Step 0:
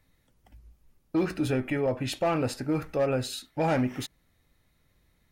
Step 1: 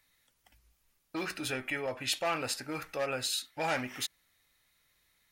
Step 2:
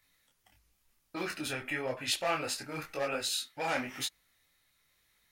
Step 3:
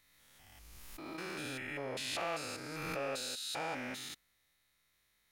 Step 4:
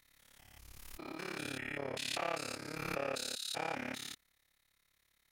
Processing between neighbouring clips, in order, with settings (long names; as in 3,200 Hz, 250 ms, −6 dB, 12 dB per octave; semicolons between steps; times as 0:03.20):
tilt shelving filter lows −10 dB, about 730 Hz; level −5.5 dB
micro pitch shift up and down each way 33 cents; level +3.5 dB
spectrum averaged block by block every 200 ms; background raised ahead of every attack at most 24 dB per second; level −2.5 dB
amplitude modulation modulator 35 Hz, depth 85%; level +4 dB